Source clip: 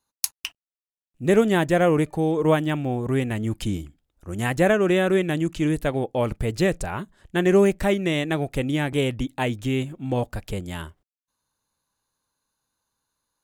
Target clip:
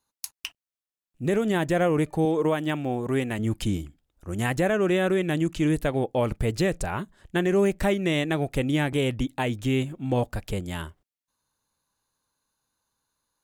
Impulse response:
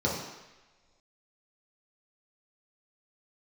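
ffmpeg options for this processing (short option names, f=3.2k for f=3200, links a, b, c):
-filter_complex "[0:a]asettb=1/sr,asplit=3[a][b][c];[a]atrim=end=2.254[d];[b]atrim=start=2.25:end=3.39,asetpts=PTS-STARTPTS,afade=t=in:d=0.004:c=qsin,afade=t=out:st=1.136:d=0.004:c=qsin,highpass=f=200:p=1[e];[c]atrim=start=3.386[f];[d][e]acrossfade=d=0.004:c1=hsin:c2=qsin[g];[g][f]acrossfade=d=0.004:c1=qsin:c2=hsin,alimiter=limit=-14.5dB:level=0:latency=1:release=131"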